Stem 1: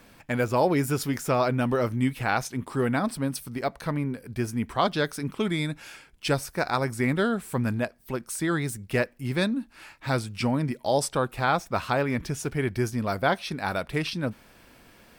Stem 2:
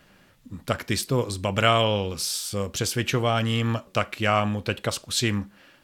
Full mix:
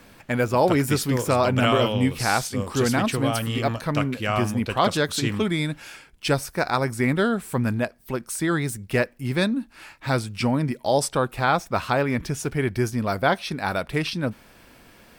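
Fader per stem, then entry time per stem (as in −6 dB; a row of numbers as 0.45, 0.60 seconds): +3.0, −3.0 decibels; 0.00, 0.00 seconds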